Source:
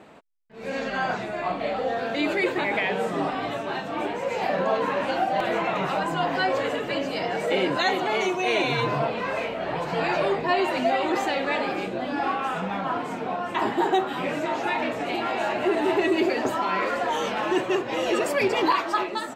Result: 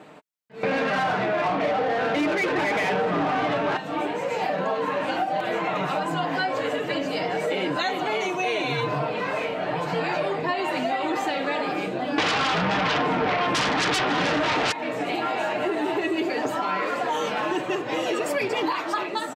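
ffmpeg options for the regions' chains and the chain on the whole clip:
-filter_complex "[0:a]asettb=1/sr,asplit=3[s0][s1][s2];[s0]atrim=end=0.634[s3];[s1]atrim=start=0.63:end=3.77,asetpts=PTS-STARTPTS,afade=t=in:d=0.004:c=qsin,afade=t=out:st=3.136:d=0.004:c=qsin,lowpass=7200,bass=f=250:g=10,treble=f=4000:g=-8,asplit=2[s4][s5];[s5]highpass=f=720:p=1,volume=17.8,asoftclip=type=tanh:threshold=0.316[s6];[s4][s6]amix=inputs=2:normalize=0,lowpass=f=2100:p=1,volume=0.501[s7];[s2]atrim=start=3.766[s8];[s3][s7]acrossfade=d=0.004:c1=hsin:c2=qsin[s9];[s9][s8]acrossfade=d=0.004:c1=qsin:c2=hsin,asettb=1/sr,asplit=3[s10][s11][s12];[s10]atrim=end=12.184[s13];[s11]atrim=start=12.18:end=14.72,asetpts=PTS-STARTPTS,afade=t=in:d=0.004:c=qsin,afade=t=out:st=2.536:d=0.004:c=qsin,lowpass=3100,aeval=exprs='0.316*sin(PI/2*7.94*val(0)/0.316)':c=same[s14];[s12]atrim=start=14.716[s15];[s13][s14]acrossfade=d=0.004:c1=hsin:c2=qsin[s16];[s16][s15]acrossfade=d=0.004:c1=qsin:c2=hsin,highpass=88,aecho=1:1:6.6:0.37,acompressor=threshold=0.0631:ratio=6,volume=1.26"

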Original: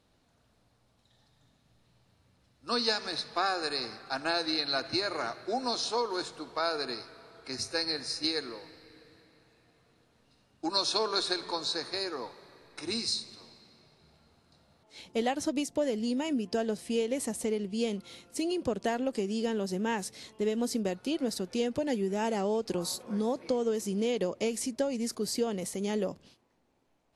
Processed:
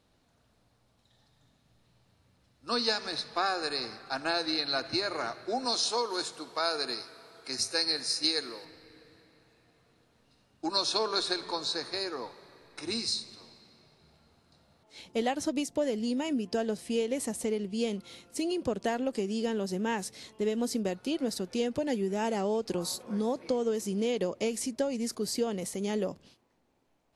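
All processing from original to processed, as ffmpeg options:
-filter_complex "[0:a]asettb=1/sr,asplit=3[s0][s1][s2];[s0]atrim=end=5.654[s3];[s1]atrim=start=5.65:end=8.65,asetpts=PTS-STARTPTS,afade=t=in:d=0.004:c=qsin,afade=t=out:st=2.996:d=0.004:c=qsin,highpass=f=160:p=1,aemphasis=mode=production:type=cd[s4];[s2]atrim=start=8.646[s5];[s3][s4]acrossfade=d=0.004:c1=hsin:c2=qsin[s6];[s6][s5]acrossfade=d=0.004:c1=qsin:c2=hsin"

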